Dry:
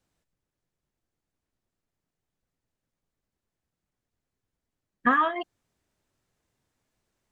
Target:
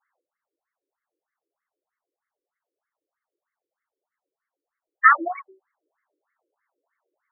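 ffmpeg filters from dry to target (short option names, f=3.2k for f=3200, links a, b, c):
-af "bandreject=f=60:t=h:w=6,bandreject=f=120:t=h:w=6,bandreject=f=180:t=h:w=6,bandreject=f=240:t=h:w=6,bandreject=f=300:t=h:w=6,bandreject=f=360:t=h:w=6,bandreject=f=420:t=h:w=6,bandreject=f=480:t=h:w=6,bandreject=f=540:t=h:w=6,asetrate=46722,aresample=44100,atempo=0.943874,crystalizer=i=4.5:c=0,afftfilt=real='re*between(b*sr/1024,390*pow(1600/390,0.5+0.5*sin(2*PI*3.2*pts/sr))/1.41,390*pow(1600/390,0.5+0.5*sin(2*PI*3.2*pts/sr))*1.41)':imag='im*between(b*sr/1024,390*pow(1600/390,0.5+0.5*sin(2*PI*3.2*pts/sr))/1.41,390*pow(1600/390,0.5+0.5*sin(2*PI*3.2*pts/sr))*1.41)':win_size=1024:overlap=0.75,volume=7.5dB"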